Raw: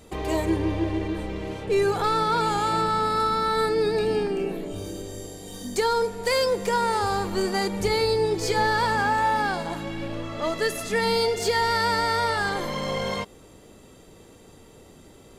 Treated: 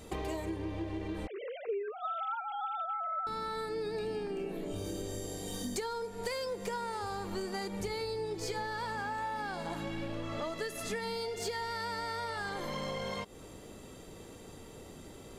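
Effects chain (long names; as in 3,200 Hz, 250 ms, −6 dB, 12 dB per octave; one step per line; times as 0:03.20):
0:01.27–0:03.27: three sine waves on the formant tracks
downward compressor 10 to 1, threshold −34 dBFS, peak gain reduction 20.5 dB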